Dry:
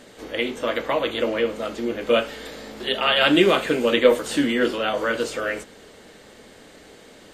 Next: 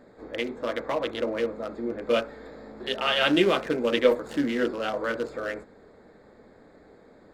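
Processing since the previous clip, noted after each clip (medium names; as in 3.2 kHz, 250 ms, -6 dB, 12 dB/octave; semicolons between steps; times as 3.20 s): local Wiener filter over 15 samples; trim -4.5 dB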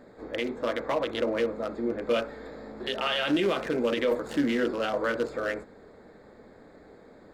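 peak limiter -18.5 dBFS, peak gain reduction 11 dB; trim +1.5 dB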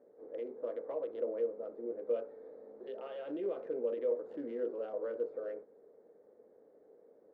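band-pass filter 470 Hz, Q 3.4; trim -5.5 dB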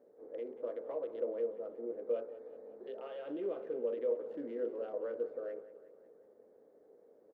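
feedback delay 184 ms, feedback 59%, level -15.5 dB; trim -1 dB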